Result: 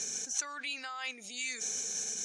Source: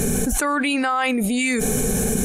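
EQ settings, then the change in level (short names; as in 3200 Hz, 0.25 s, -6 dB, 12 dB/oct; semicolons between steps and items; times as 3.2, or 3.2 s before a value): band-pass 6000 Hz, Q 5.2; air absorption 120 m; +9.0 dB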